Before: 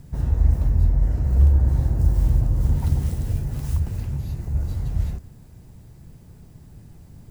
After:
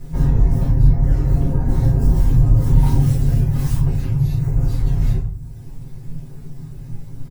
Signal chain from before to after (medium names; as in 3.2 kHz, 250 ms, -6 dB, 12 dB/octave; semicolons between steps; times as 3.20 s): reverb removal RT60 1.2 s; saturation -14 dBFS, distortion -15 dB; comb 7.4 ms, depth 85%; reverberation RT60 0.55 s, pre-delay 3 ms, DRR -7.5 dB